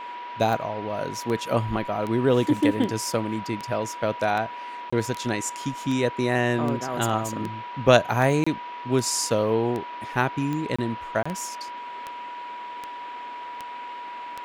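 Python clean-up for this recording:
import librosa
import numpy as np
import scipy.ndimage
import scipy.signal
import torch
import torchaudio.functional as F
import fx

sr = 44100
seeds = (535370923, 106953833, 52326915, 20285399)

y = fx.fix_declick_ar(x, sr, threshold=10.0)
y = fx.notch(y, sr, hz=970.0, q=30.0)
y = fx.fix_interpolate(y, sr, at_s=(4.9, 8.44, 10.76, 11.23), length_ms=25.0)
y = fx.noise_reduce(y, sr, print_start_s=12.85, print_end_s=13.35, reduce_db=30.0)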